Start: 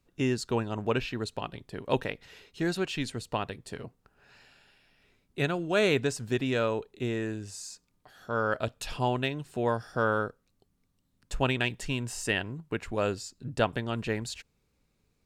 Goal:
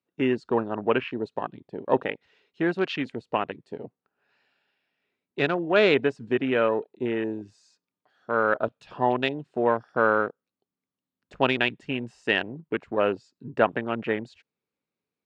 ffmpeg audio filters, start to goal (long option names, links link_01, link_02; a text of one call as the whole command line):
ffmpeg -i in.wav -af "afwtdn=0.0126,highpass=230,lowpass=3800,volume=6dB" out.wav